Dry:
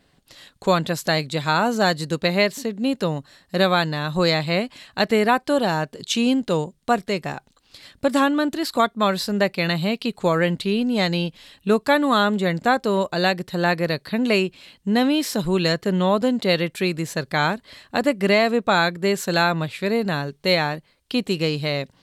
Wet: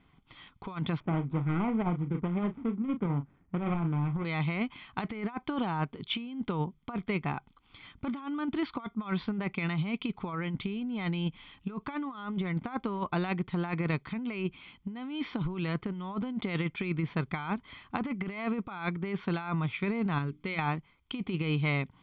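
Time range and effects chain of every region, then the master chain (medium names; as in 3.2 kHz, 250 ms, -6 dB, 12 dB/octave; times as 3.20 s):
1.00–4.25 s: median filter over 41 samples + distance through air 310 m + doubling 35 ms -10 dB
20.18–20.59 s: peaking EQ 790 Hz -9.5 dB 0.54 oct + hum notches 60/120/180/240/300 Hz + compression, threshold -25 dBFS
whole clip: elliptic low-pass 3.1 kHz, stop band 60 dB; comb 0.9 ms, depth 71%; compressor with a negative ratio -23 dBFS, ratio -0.5; trim -7.5 dB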